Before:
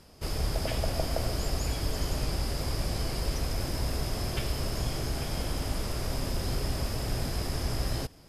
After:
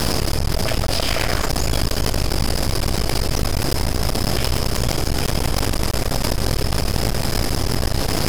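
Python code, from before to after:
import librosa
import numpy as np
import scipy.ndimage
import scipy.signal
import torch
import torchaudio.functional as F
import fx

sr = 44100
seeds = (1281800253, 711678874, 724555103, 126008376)

y = fx.peak_eq(x, sr, hz=fx.line((0.91, 4300.0), (1.47, 1200.0)), db=12.5, octaves=1.4, at=(0.91, 1.47), fade=0.02)
y = np.maximum(y, 0.0)
y = fx.env_flatten(y, sr, amount_pct=100)
y = y * librosa.db_to_amplitude(7.5)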